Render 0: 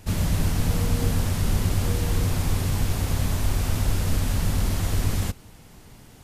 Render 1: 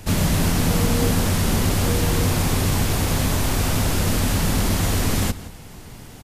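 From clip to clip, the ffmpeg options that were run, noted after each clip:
-filter_complex "[0:a]acrossover=split=150[a][b];[a]asoftclip=type=tanh:threshold=-28.5dB[c];[c][b]amix=inputs=2:normalize=0,asplit=2[d][e];[e]adelay=169.1,volume=-16dB,highshelf=f=4k:g=-3.8[f];[d][f]amix=inputs=2:normalize=0,volume=8dB"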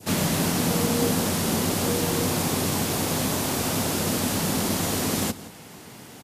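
-af "adynamicequalizer=threshold=0.00891:dfrequency=1900:dqfactor=0.81:tfrequency=1900:tqfactor=0.81:attack=5:release=100:ratio=0.375:range=2:mode=cutabove:tftype=bell,highpass=180"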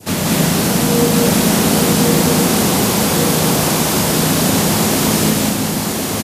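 -filter_complex "[0:a]asplit=2[a][b];[b]aecho=0:1:1062:0.708[c];[a][c]amix=inputs=2:normalize=0,acontrast=49,asplit=2[d][e];[e]aecho=0:1:183.7|221.6:0.794|0.631[f];[d][f]amix=inputs=2:normalize=0"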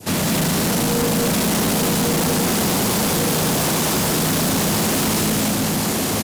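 -af "asoftclip=type=hard:threshold=-17dB"

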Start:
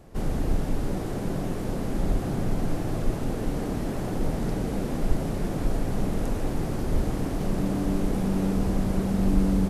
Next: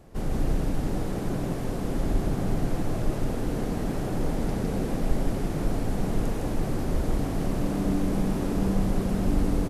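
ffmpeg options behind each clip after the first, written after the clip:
-af "aecho=1:1:159:0.668,volume=-1.5dB"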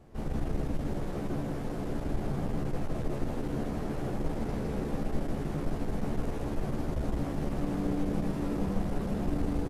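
-filter_complex "[0:a]highshelf=f=4.7k:g=-7.5,aeval=exprs='clip(val(0),-1,0.0447)':c=same,asplit=2[a][b];[b]adelay=14,volume=-5dB[c];[a][c]amix=inputs=2:normalize=0,volume=-4.5dB"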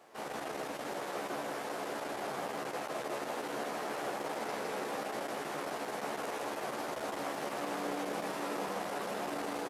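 -af "highpass=710,volume=7dB"

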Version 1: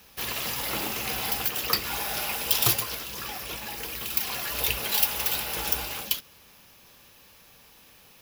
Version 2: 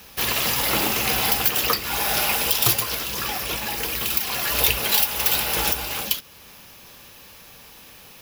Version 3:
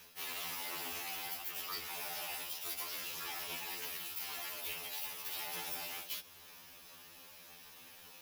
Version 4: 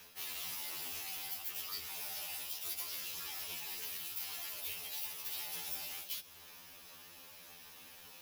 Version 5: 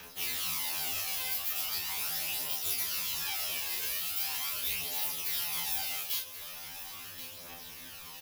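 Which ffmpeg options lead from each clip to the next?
-af "alimiter=limit=-13dB:level=0:latency=1:release=361,volume=8.5dB"
-af "lowshelf=f=300:g=-8,areverse,acompressor=threshold=-29dB:ratio=10,areverse,afftfilt=real='re*2*eq(mod(b,4),0)':imag='im*2*eq(mod(b,4),0)':win_size=2048:overlap=0.75,volume=-7dB"
-filter_complex "[0:a]acrossover=split=140|3000[a][b][c];[b]acompressor=threshold=-59dB:ratio=2[d];[a][d][c]amix=inputs=3:normalize=0,volume=1dB"
-filter_complex "[0:a]aphaser=in_gain=1:out_gain=1:delay=2:decay=0.51:speed=0.4:type=triangular,asplit=2[a][b];[b]adelay=31,volume=-2.5dB[c];[a][c]amix=inputs=2:normalize=0,aecho=1:1:1079:0.237,volume=5dB"

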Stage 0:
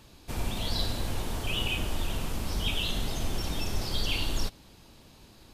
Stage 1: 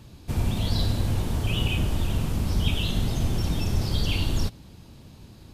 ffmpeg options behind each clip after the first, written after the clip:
-af "equalizer=f=110:t=o:w=2.7:g=12"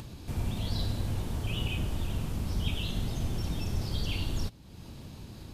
-af "acompressor=mode=upward:threshold=-27dB:ratio=2.5,volume=-7dB"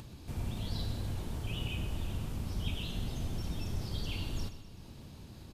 -af "aecho=1:1:126|252|378|504|630|756:0.251|0.136|0.0732|0.0396|0.0214|0.0115,volume=-5dB"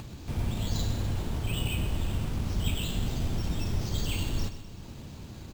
-af "acrusher=samples=4:mix=1:aa=0.000001,volume=6.5dB"

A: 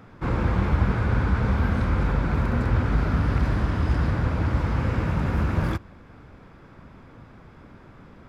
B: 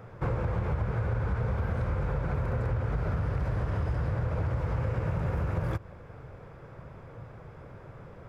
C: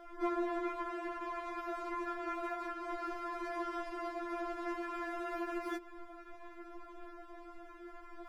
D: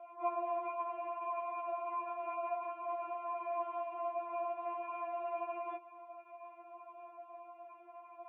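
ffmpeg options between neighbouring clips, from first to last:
-filter_complex "[0:a]equalizer=f=125:t=o:w=1:g=8,equalizer=f=250:t=o:w=1:g=-10,equalizer=f=500:t=o:w=1:g=9,equalizer=f=4k:t=o:w=1:g=-5,asplit=2[a][b];[b]alimiter=limit=-16.5dB:level=0:latency=1,volume=-1dB[c];[a][c]amix=inputs=2:normalize=0,acompressor=threshold=-19dB:ratio=6,volume=-7dB"
-af "afftfilt=real='re*4*eq(mod(b,16),0)':imag='im*4*eq(mod(b,16),0)':win_size=2048:overlap=0.75,volume=2.5dB"
-filter_complex "[0:a]asplit=3[a][b][c];[a]bandpass=f=730:t=q:w=8,volume=0dB[d];[b]bandpass=f=1.09k:t=q:w=8,volume=-6dB[e];[c]bandpass=f=2.44k:t=q:w=8,volume=-9dB[f];[d][e][f]amix=inputs=3:normalize=0,highpass=250,equalizer=f=280:t=q:w=4:g=8,equalizer=f=580:t=q:w=4:g=8,equalizer=f=1k:t=q:w=4:g=10,equalizer=f=1.5k:t=q:w=4:g=-6,equalizer=f=2.4k:t=q:w=4:g=9,lowpass=f=3.2k:w=0.5412,lowpass=f=3.2k:w=1.3066,volume=3.5dB"

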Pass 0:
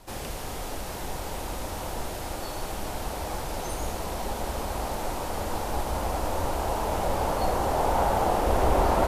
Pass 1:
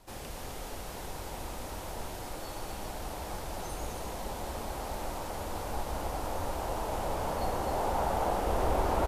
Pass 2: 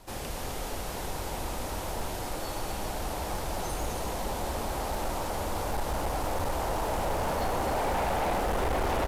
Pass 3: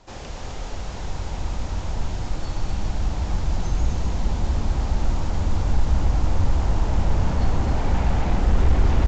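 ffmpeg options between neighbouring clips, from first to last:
-af "aecho=1:1:258:0.501,volume=-7dB"
-af "asoftclip=type=hard:threshold=-31dB,volume=5.5dB"
-af "asubboost=boost=6.5:cutoff=210" -ar 16000 -c:a pcm_mulaw

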